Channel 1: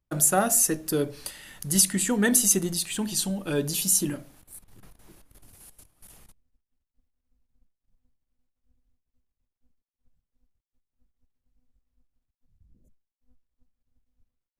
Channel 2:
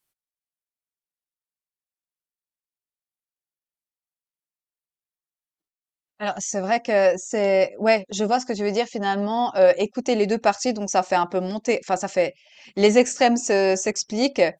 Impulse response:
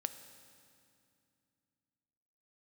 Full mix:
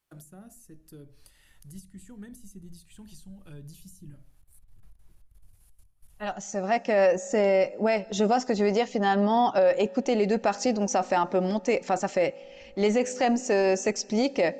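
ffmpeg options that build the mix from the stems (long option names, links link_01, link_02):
-filter_complex "[0:a]asubboost=boost=8.5:cutoff=98,acrossover=split=290[link_01][link_02];[link_02]acompressor=threshold=-37dB:ratio=10[link_03];[link_01][link_03]amix=inputs=2:normalize=0,volume=-15.5dB,asplit=2[link_04][link_05];[1:a]highshelf=frequency=4500:gain=-8,volume=0.5dB,asplit=2[link_06][link_07];[link_07]volume=-15dB[link_08];[link_05]apad=whole_len=643521[link_09];[link_06][link_09]sidechaincompress=threshold=-60dB:ratio=4:attack=41:release=1130[link_10];[2:a]atrim=start_sample=2205[link_11];[link_08][link_11]afir=irnorm=-1:irlink=0[link_12];[link_04][link_10][link_12]amix=inputs=3:normalize=0,alimiter=limit=-14.5dB:level=0:latency=1:release=36"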